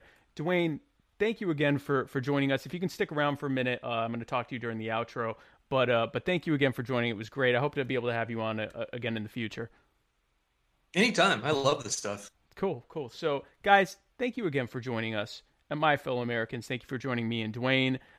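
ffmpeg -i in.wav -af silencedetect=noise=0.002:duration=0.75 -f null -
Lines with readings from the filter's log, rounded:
silence_start: 9.77
silence_end: 10.94 | silence_duration: 1.17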